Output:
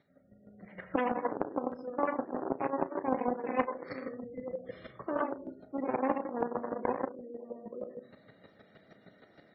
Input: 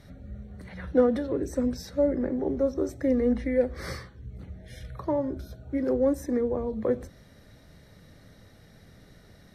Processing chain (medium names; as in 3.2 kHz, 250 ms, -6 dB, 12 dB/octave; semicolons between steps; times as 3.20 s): distance through air 84 m; echo from a far wall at 150 m, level -11 dB; reverberation RT60 0.50 s, pre-delay 50 ms, DRR 0.5 dB; Chebyshev shaper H 3 -13 dB, 4 -31 dB, 6 -7 dB, 8 -12 dB, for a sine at -9.5 dBFS; in parallel at -11.5 dB: bit crusher 5-bit; on the sum: band-pass 230–4800 Hz; spectral gate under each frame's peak -25 dB strong; level rider gain up to 12 dB; square tremolo 6.4 Hz, depth 65%, duty 15%; doubling 34 ms -14 dB; compression 3:1, threshold -30 dBFS, peak gain reduction 15 dB